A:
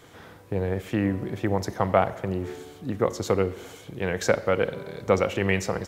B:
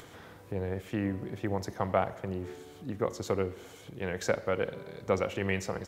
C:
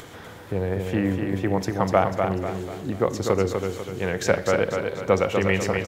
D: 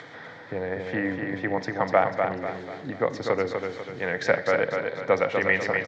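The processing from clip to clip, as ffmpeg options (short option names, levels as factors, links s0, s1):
-af "acompressor=mode=upward:threshold=0.0158:ratio=2.5,volume=0.447"
-af "aecho=1:1:246|492|738|984|1230:0.562|0.242|0.104|0.0447|0.0192,volume=2.51"
-af "highpass=f=140:w=0.5412,highpass=f=140:w=1.3066,equalizer=f=200:t=q:w=4:g=-10,equalizer=f=370:t=q:w=4:g=-9,equalizer=f=1100:t=q:w=4:g=-3,equalizer=f=1900:t=q:w=4:g=8,equalizer=f=2800:t=q:w=4:g=-9,lowpass=f=4700:w=0.5412,lowpass=f=4700:w=1.3066"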